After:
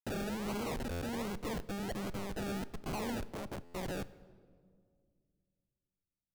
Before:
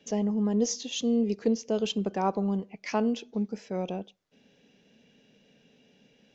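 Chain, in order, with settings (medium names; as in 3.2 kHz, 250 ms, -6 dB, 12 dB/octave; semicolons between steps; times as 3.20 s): coarse spectral quantiser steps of 30 dB; 1.58–2.37 s: robot voice 99.5 Hz; peaking EQ 5.2 kHz -9 dB 2.7 oct; Schmitt trigger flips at -43 dBFS; decimation with a swept rate 34×, swing 60% 1.3 Hz; 3.32–3.74 s: peaking EQ 120 Hz +12.5 dB 1.6 oct; wavefolder -30.5 dBFS; peak limiter -36 dBFS, peak gain reduction 5.5 dB; reverberation RT60 2.1 s, pre-delay 8 ms, DRR 16.5 dB; buffer glitch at 0.91/3.64 s, samples 512, times 8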